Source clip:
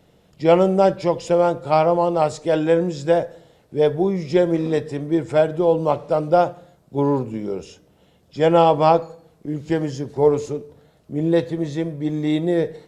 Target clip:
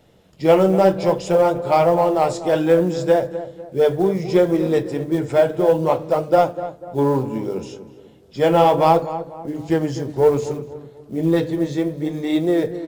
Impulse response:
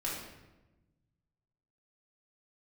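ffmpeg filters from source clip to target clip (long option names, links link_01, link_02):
-filter_complex "[0:a]bandreject=frequency=50:width_type=h:width=6,bandreject=frequency=100:width_type=h:width=6,bandreject=frequency=150:width_type=h:width=6,bandreject=frequency=200:width_type=h:width=6,bandreject=frequency=250:width_type=h:width=6,bandreject=frequency=300:width_type=h:width=6,acrusher=bits=8:mode=log:mix=0:aa=0.000001,flanger=delay=8:depth=8.8:regen=-50:speed=0.64:shape=triangular,asplit=2[link_01][link_02];[link_02]asoftclip=type=hard:threshold=-19dB,volume=-7dB[link_03];[link_01][link_03]amix=inputs=2:normalize=0,asplit=2[link_04][link_05];[link_05]adelay=246,lowpass=frequency=1500:poles=1,volume=-12dB,asplit=2[link_06][link_07];[link_07]adelay=246,lowpass=frequency=1500:poles=1,volume=0.41,asplit=2[link_08][link_09];[link_09]adelay=246,lowpass=frequency=1500:poles=1,volume=0.41,asplit=2[link_10][link_11];[link_11]adelay=246,lowpass=frequency=1500:poles=1,volume=0.41[link_12];[link_04][link_06][link_08][link_10][link_12]amix=inputs=5:normalize=0,volume=2.5dB"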